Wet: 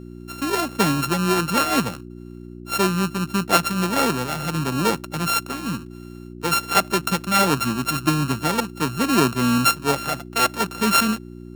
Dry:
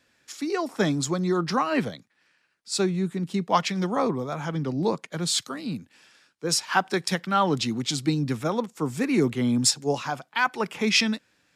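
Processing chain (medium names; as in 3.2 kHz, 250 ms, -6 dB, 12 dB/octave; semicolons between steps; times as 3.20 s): sorted samples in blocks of 32 samples; mains buzz 60 Hz, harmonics 6, -42 dBFS 0 dB/octave; trim +4 dB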